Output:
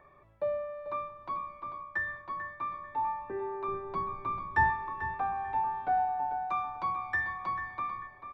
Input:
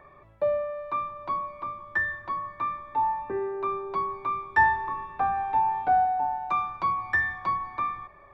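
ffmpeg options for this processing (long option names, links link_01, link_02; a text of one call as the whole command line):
ffmpeg -i in.wav -filter_complex "[0:a]asplit=3[link_01][link_02][link_03];[link_01]afade=type=out:start_time=1.59:duration=0.02[link_04];[link_02]agate=range=-33dB:threshold=-38dB:ratio=3:detection=peak,afade=type=in:start_time=1.59:duration=0.02,afade=type=out:start_time=2.75:duration=0.02[link_05];[link_03]afade=type=in:start_time=2.75:duration=0.02[link_06];[link_04][link_05][link_06]amix=inputs=3:normalize=0,asettb=1/sr,asplit=3[link_07][link_08][link_09];[link_07]atrim=end=3.684[link_10];[link_08]atrim=start=3.68:end=4.7,asetpts=PTS-STARTPTS,afade=type=in:duration=0.004:curve=qsin,afade=type=out:start_time=1.016:duration=0.004:curve=qsin,lowshelf=frequency=320:gain=11[link_11];[link_09]atrim=start=4.696[link_12];[link_10][link_11]acrossfade=duration=0.004:curve1=hsin:curve2=qsin[link_13];[link_13][link_12]acrossfade=duration=0.004:curve1=qsin:curve2=hsin,asplit=2[link_14][link_15];[link_15]adelay=442,lowpass=frequency=3800:poles=1,volume=-9.5dB,asplit=2[link_16][link_17];[link_17]adelay=442,lowpass=frequency=3800:poles=1,volume=0.28,asplit=2[link_18][link_19];[link_19]adelay=442,lowpass=frequency=3800:poles=1,volume=0.28[link_20];[link_14][link_16][link_18][link_20]amix=inputs=4:normalize=0,volume=-6.5dB" out.wav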